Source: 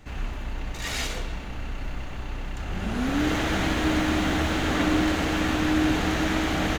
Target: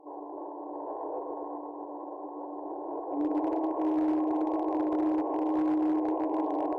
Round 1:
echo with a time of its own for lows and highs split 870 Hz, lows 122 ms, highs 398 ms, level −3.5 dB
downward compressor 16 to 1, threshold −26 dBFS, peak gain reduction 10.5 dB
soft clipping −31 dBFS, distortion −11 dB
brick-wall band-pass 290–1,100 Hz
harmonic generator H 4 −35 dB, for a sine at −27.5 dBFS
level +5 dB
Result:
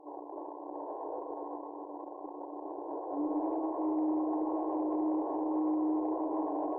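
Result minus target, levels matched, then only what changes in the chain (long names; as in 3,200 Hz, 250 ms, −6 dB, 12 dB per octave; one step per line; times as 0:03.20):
soft clipping: distortion +14 dB
change: soft clipping −20 dBFS, distortion −25 dB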